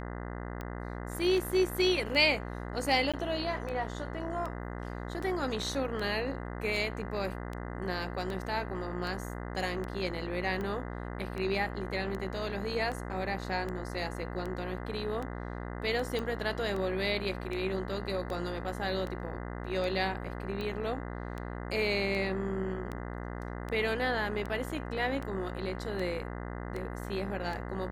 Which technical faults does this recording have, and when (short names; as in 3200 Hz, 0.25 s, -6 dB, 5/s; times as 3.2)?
buzz 60 Hz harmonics 34 -39 dBFS
tick 78 rpm -25 dBFS
3.12–3.14 gap 16 ms
16.19 pop -22 dBFS